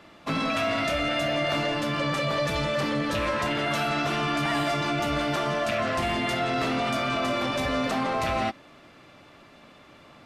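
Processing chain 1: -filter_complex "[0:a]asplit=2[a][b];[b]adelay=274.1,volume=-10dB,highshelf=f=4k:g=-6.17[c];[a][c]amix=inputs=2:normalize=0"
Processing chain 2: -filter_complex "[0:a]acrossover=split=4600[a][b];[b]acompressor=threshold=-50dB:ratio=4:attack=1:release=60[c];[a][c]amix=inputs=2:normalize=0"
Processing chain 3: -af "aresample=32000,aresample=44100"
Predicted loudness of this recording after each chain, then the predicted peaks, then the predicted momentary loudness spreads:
-26.0, -26.5, -26.5 LUFS; -15.5, -16.5, -16.5 dBFS; 1, 1, 1 LU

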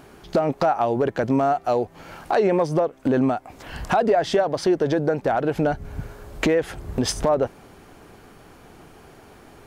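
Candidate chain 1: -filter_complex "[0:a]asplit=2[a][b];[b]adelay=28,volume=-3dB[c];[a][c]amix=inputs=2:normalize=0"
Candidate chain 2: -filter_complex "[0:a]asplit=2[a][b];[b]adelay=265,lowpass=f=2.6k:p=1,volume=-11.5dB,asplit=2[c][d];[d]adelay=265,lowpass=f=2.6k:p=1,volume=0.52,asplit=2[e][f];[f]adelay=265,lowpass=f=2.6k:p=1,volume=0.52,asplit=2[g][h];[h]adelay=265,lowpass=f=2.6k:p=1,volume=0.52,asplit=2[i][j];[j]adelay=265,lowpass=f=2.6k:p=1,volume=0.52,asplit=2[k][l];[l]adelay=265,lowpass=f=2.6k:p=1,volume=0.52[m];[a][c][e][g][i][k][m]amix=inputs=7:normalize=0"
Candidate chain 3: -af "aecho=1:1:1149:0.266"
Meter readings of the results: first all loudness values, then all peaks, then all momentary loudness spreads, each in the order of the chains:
-20.5, -22.5, -22.5 LUFS; -6.5, -8.0, -7.5 dBFS; 11, 13, 14 LU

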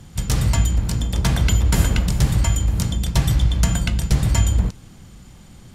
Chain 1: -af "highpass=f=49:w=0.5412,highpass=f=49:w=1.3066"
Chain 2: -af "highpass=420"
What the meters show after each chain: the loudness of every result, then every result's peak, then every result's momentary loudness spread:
-20.5, -28.5 LUFS; -4.0, -8.5 dBFS; 4, 6 LU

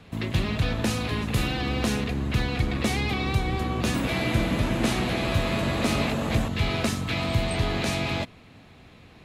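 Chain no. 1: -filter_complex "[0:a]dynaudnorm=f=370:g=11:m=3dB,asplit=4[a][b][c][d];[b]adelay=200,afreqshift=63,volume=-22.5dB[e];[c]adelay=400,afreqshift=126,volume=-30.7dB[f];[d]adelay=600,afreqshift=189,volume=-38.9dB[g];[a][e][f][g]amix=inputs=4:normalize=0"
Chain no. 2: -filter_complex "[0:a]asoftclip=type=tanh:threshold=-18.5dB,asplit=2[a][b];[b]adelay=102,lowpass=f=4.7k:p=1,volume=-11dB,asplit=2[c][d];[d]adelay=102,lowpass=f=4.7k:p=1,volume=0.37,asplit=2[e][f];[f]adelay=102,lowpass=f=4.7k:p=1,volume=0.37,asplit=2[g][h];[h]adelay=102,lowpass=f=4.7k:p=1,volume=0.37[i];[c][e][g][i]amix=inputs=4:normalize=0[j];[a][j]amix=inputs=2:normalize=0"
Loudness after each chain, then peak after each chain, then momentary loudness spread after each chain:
-24.0, -27.5 LUFS; -7.0, -17.0 dBFS; 5, 2 LU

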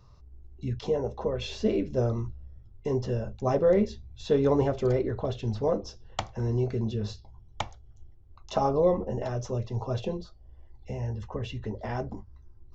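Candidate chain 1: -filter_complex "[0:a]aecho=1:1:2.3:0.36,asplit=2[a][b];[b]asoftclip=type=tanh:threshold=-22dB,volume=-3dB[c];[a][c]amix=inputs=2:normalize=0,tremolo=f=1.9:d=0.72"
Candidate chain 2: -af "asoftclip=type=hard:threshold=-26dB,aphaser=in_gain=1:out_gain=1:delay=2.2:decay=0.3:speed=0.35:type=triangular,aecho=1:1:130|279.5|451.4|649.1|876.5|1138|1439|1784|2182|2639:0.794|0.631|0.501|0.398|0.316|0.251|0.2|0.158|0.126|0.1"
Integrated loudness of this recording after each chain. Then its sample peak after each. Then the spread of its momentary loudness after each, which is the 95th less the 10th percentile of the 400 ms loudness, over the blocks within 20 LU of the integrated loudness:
-28.0, -28.5 LUFS; -10.0, -14.5 dBFS; 15, 9 LU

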